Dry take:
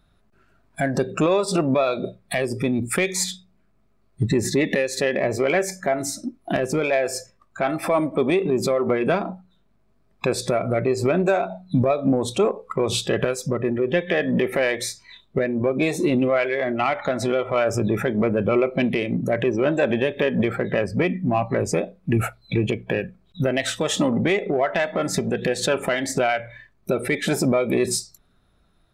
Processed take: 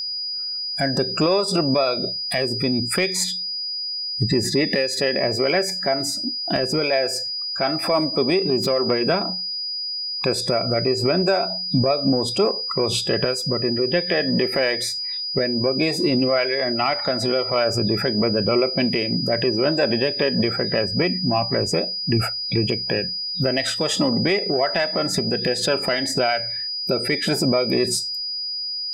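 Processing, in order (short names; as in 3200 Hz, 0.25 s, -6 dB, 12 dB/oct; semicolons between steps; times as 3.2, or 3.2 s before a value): 8.49–9.02 self-modulated delay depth 0.057 ms; whine 4900 Hz -25 dBFS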